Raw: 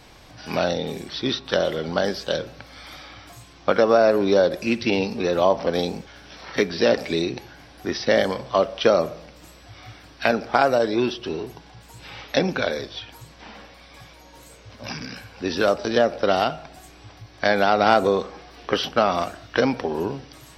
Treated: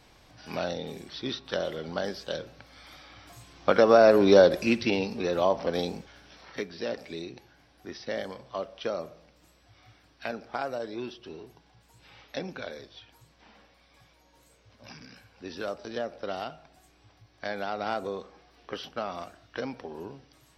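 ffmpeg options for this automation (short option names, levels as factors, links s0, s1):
-af "volume=1.12,afade=t=in:st=3.05:d=1.35:silence=0.316228,afade=t=out:st=4.4:d=0.58:silence=0.446684,afade=t=out:st=5.92:d=0.76:silence=0.375837"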